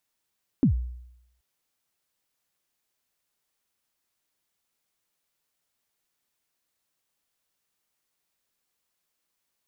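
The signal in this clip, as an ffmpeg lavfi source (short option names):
-f lavfi -i "aevalsrc='0.2*pow(10,-3*t/0.81)*sin(2*PI*(310*0.103/log(61/310)*(exp(log(61/310)*min(t,0.103)/0.103)-1)+61*max(t-0.103,0)))':d=0.78:s=44100"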